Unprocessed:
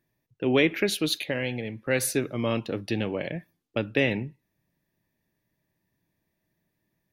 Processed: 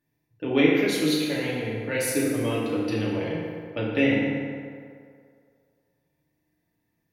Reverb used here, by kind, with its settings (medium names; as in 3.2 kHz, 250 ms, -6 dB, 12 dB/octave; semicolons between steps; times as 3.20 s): FDN reverb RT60 2.2 s, low-frequency decay 0.8×, high-frequency decay 0.55×, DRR -6 dB; trim -5.5 dB